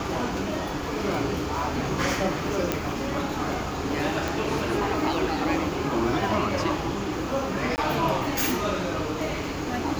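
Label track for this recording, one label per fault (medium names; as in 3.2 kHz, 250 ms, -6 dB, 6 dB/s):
2.720000	2.720000	pop -8 dBFS
4.280000	4.280000	pop
7.760000	7.780000	dropout 19 ms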